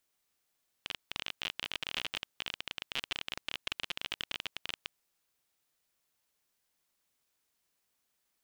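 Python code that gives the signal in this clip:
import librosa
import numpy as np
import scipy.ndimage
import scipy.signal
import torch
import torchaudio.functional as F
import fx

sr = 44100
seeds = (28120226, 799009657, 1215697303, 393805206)

y = fx.geiger_clicks(sr, seeds[0], length_s=4.01, per_s=30.0, level_db=-18.0)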